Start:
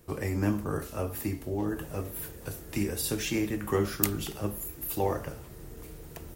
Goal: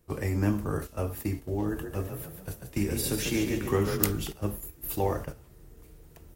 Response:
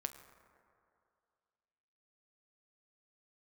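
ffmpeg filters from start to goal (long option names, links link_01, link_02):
-filter_complex "[0:a]agate=range=-10dB:threshold=-36dB:ratio=16:detection=peak,lowshelf=frequency=88:gain=6.5,asettb=1/sr,asplit=3[link_01][link_02][link_03];[link_01]atrim=end=1.694[link_04];[link_02]atrim=start=1.69:end=4.12,asetpts=PTS-STARTPTS,afade=type=in:duration=0.004:curve=qsin,afade=type=out:start_time=2.426:duration=0.004:curve=qsin,asplit=6[link_05][link_06][link_07][link_08][link_09][link_10];[link_06]adelay=142,afreqshift=31,volume=-6.5dB[link_11];[link_07]adelay=284,afreqshift=62,volume=-13.4dB[link_12];[link_08]adelay=426,afreqshift=93,volume=-20.4dB[link_13];[link_09]adelay=568,afreqshift=124,volume=-27.3dB[link_14];[link_10]adelay=710,afreqshift=155,volume=-34.2dB[link_15];[link_05][link_11][link_12][link_13][link_14][link_15]amix=inputs=6:normalize=0,atrim=end_sample=107163[link_16];[link_03]atrim=start=4.116[link_17];[link_04][link_16]acrossfade=duration=0.004:curve1=hsin:curve2=qsin[link_18];[link_18][link_17]acrossfade=duration=0.004:curve1=qsin:curve2=hsin"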